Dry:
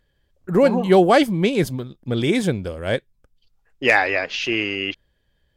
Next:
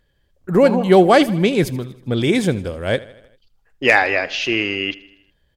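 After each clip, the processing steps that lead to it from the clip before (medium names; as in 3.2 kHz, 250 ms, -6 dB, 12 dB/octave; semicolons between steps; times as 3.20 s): feedback delay 79 ms, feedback 58%, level -19.5 dB; trim +2.5 dB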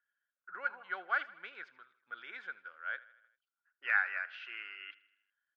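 ladder band-pass 1.5 kHz, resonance 85%; distance through air 140 m; trim -8 dB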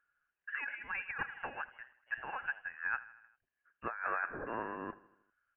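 frequency inversion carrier 3.1 kHz; compressor with a negative ratio -39 dBFS, ratio -1; trim +2.5 dB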